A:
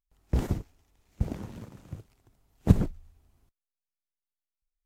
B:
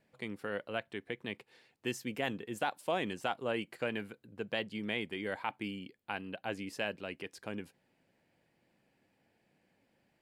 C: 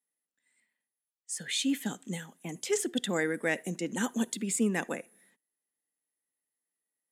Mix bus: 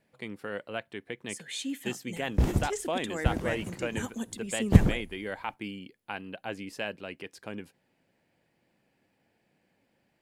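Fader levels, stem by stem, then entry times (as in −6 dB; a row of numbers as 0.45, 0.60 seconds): +2.0, +1.5, −5.5 decibels; 2.05, 0.00, 0.00 seconds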